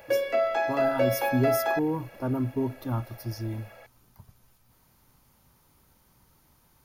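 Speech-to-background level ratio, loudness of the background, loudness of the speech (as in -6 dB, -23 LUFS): -4.0 dB, -26.5 LUFS, -30.5 LUFS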